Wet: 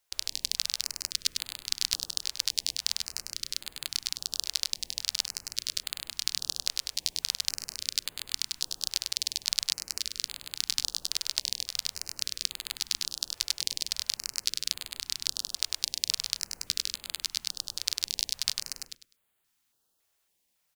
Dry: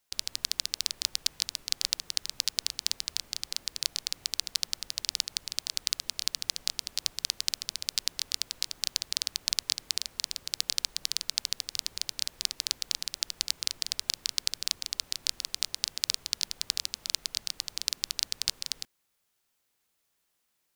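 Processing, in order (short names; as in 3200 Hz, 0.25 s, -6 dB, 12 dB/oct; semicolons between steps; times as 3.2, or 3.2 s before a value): feedback echo 0.1 s, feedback 24%, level -5 dB; stepped notch 3.6 Hz 200–5600 Hz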